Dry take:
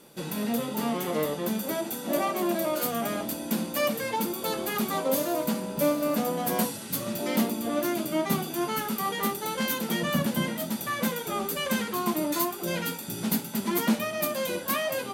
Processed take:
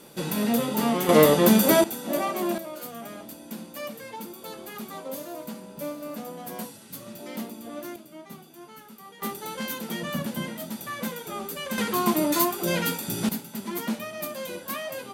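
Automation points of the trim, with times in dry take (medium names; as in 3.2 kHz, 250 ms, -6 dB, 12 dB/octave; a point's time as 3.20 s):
+4.5 dB
from 1.09 s +12 dB
from 1.84 s 0 dB
from 2.58 s -9.5 dB
from 7.96 s -17 dB
from 9.22 s -4 dB
from 11.78 s +4.5 dB
from 13.29 s -5 dB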